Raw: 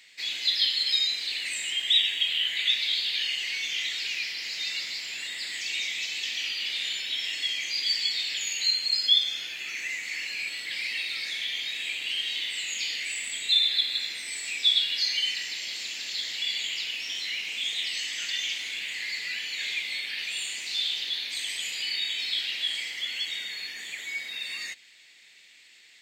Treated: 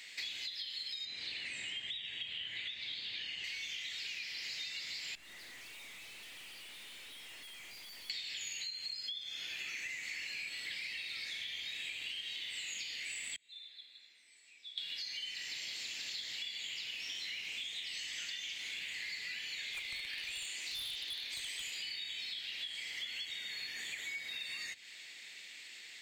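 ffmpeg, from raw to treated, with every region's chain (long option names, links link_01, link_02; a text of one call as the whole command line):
ffmpeg -i in.wav -filter_complex "[0:a]asettb=1/sr,asplit=3[link_01][link_02][link_03];[link_01]atrim=end=1.054[link_04];[link_02]atrim=start=1.05:end=3.44,asetpts=PTS-STARTPTS,afade=type=in:duration=0.004:curve=qsin,afade=type=out:start_time=2.386:duration=0.004:curve=qsin,acrossover=split=9300[link_05][link_06];[link_06]acompressor=threshold=-54dB:ratio=4:attack=1:release=60[link_07];[link_05][link_07]amix=inputs=2:normalize=0,highpass=110,aemphasis=mode=reproduction:type=bsi[link_08];[link_03]atrim=start=3.436[link_09];[link_04][link_08]acrossfade=duration=0.004:curve1=hsin:curve2=qsin[link_10];[link_10][link_09]acrossfade=duration=0.004:curve1=qsin:curve2=hsin,asettb=1/sr,asplit=3[link_11][link_12][link_13];[link_11]atrim=end=5.154[link_14];[link_12]atrim=start=5.15:end=8.1,asetpts=PTS-STARTPTS,afade=type=in:duration=0.004:curve=qsin,afade=type=out:start_time=2.946:duration=0.004:curve=qsin,lowpass=frequency=1000:poles=1,aeval=exprs='(tanh(501*val(0)+0.3)-tanh(0.3))/501':channel_layout=same[link_15];[link_13]atrim=start=8.096[link_16];[link_14][link_15]acrossfade=duration=0.004:curve1=hsin:curve2=qsin[link_17];[link_17][link_16]acrossfade=duration=0.004:curve1=qsin:curve2=hsin,asettb=1/sr,asplit=3[link_18][link_19][link_20];[link_18]atrim=end=13.364[link_21];[link_19]atrim=start=13.36:end=14.78,asetpts=PTS-STARTPTS,afade=type=in:duration=0.004:curve=qsin,afade=type=out:start_time=1.416:duration=0.004:curve=qsin,bandpass=frequency=130:width_type=q:width=0.7,aderivative[link_22];[link_20]atrim=start=14.776[link_23];[link_21][link_22]acrossfade=duration=0.004:curve1=hsin:curve2=qsin[link_24];[link_24][link_23]acrossfade=duration=0.004:curve1=qsin:curve2=hsin,asettb=1/sr,asplit=3[link_25][link_26][link_27];[link_25]atrim=end=19.734[link_28];[link_26]atrim=start=19.73:end=21.77,asetpts=PTS-STARTPTS,afade=type=in:duration=0.004:curve=qsin,afade=type=out:start_time=2.036:duration=0.004:curve=qsin,highpass=frequency=220:width=0.5412,highpass=frequency=220:width=1.3066,aeval=exprs='0.0562*(abs(mod(val(0)/0.0562+3,4)-2)-1)':channel_layout=same[link_29];[link_27]atrim=start=21.766[link_30];[link_28][link_29]acrossfade=duration=0.004:curve1=hsin:curve2=qsin[link_31];[link_31][link_30]acrossfade=duration=0.004:curve1=qsin:curve2=hsin,alimiter=limit=-21dB:level=0:latency=1:release=428,acrossover=split=120[link_32][link_33];[link_33]acompressor=threshold=-43dB:ratio=10[link_34];[link_32][link_34]amix=inputs=2:normalize=0,volume=3.5dB" out.wav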